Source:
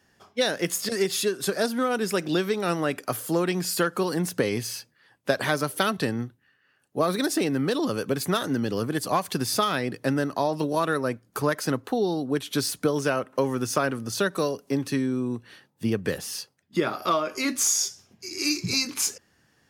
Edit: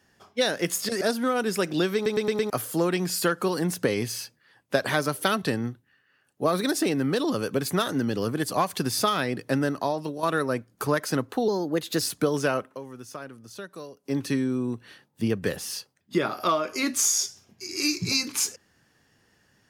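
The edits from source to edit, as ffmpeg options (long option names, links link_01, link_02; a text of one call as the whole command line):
ffmpeg -i in.wav -filter_complex "[0:a]asplit=12[link_01][link_02][link_03][link_04][link_05][link_06][link_07][link_08][link_09][link_10][link_11][link_12];[link_01]atrim=end=1.012[link_13];[link_02]atrim=start=1.558:end=2.612[link_14];[link_03]atrim=start=2.498:end=2.612[link_15];[link_04]atrim=start=2.498:end=2.612[link_16];[link_05]atrim=start=2.498:end=2.612[link_17];[link_06]atrim=start=2.498:end=2.612[link_18];[link_07]atrim=start=3.048:end=10.78,asetpts=PTS-STARTPTS,afade=type=out:start_time=7.252:duration=0.48:silence=0.316228[link_19];[link_08]atrim=start=10.78:end=12.034,asetpts=PTS-STARTPTS,afade=type=in:duration=0.004:curve=hsin:silence=0.316228[link_20];[link_09]atrim=start=12.03:end=12.63,asetpts=PTS-STARTPTS,asetrate=49833,aresample=44100[link_21];[link_10]atrim=start=12.626:end=13.39,asetpts=PTS-STARTPTS,afade=type=out:start_time=0.634:duration=0.13:silence=0.188365[link_22];[link_11]atrim=start=13.39:end=14.65,asetpts=PTS-STARTPTS,volume=-14.5dB[link_23];[link_12]atrim=start=14.65,asetpts=PTS-STARTPTS,afade=type=in:duration=0.13:silence=0.188365[link_24];[link_13][link_14]acrossfade=duration=0.004:curve1=hsin:curve2=hsin[link_25];[link_25][link_15]acrossfade=duration=0.004:curve1=hsin:curve2=hsin[link_26];[link_26][link_16]acrossfade=duration=0.004:curve1=hsin:curve2=hsin[link_27];[link_27][link_17]acrossfade=duration=0.004:curve1=hsin:curve2=hsin[link_28];[link_28][link_18]acrossfade=duration=0.004:curve1=hsin:curve2=hsin[link_29];[link_19][link_20]concat=n=2:v=0:a=1[link_30];[link_29][link_30]acrossfade=duration=0.004:curve1=hsin:curve2=hsin[link_31];[link_31][link_21]acrossfade=duration=0.004:curve1=hsin:curve2=hsin[link_32];[link_22][link_23][link_24]concat=n=3:v=0:a=1[link_33];[link_32][link_33]acrossfade=duration=0.004:curve1=hsin:curve2=hsin" out.wav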